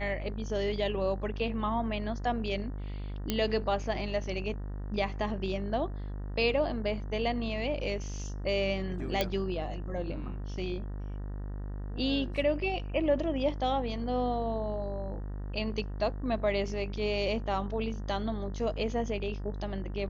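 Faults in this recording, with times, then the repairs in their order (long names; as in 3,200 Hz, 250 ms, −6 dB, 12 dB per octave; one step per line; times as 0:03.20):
mains buzz 50 Hz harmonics 38 −37 dBFS
0:03.30: click −13 dBFS
0:09.21: click −13 dBFS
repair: click removal
hum removal 50 Hz, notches 38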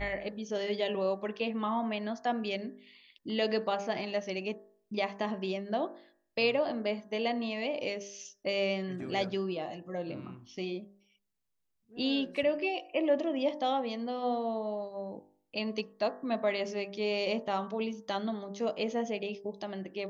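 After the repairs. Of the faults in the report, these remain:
none of them is left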